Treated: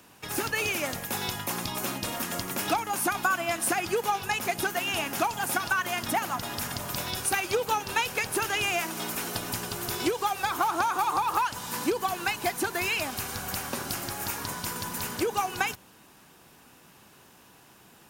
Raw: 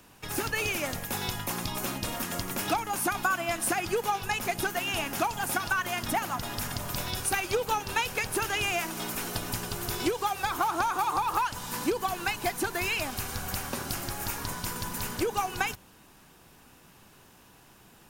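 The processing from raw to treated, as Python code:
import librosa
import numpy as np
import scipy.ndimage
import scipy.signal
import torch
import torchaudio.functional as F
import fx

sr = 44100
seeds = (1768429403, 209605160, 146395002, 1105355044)

y = fx.highpass(x, sr, hz=130.0, slope=6)
y = y * librosa.db_to_amplitude(1.5)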